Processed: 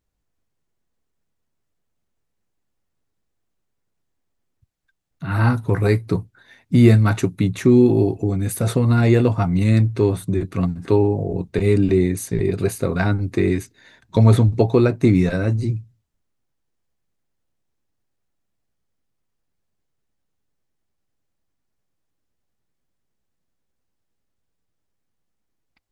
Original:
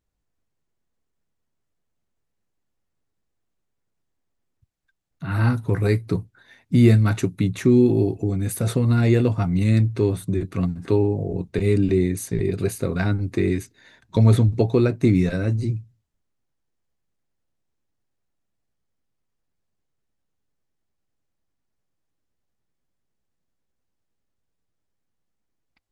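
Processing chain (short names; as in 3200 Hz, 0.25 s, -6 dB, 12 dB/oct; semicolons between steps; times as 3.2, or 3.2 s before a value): dynamic EQ 900 Hz, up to +5 dB, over -35 dBFS, Q 1; gain +2 dB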